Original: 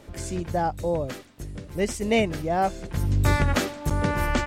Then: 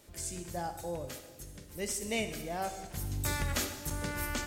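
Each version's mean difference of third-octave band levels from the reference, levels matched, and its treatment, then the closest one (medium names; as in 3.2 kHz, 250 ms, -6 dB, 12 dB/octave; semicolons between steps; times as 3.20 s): 6.5 dB: pre-emphasis filter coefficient 0.8; plate-style reverb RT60 1.5 s, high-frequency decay 0.95×, DRR 7 dB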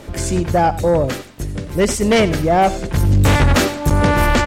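2.0 dB: sine folder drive 8 dB, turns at -8.5 dBFS; on a send: delay 92 ms -16 dB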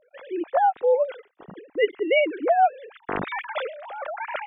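19.0 dB: formants replaced by sine waves; gate -46 dBFS, range -10 dB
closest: second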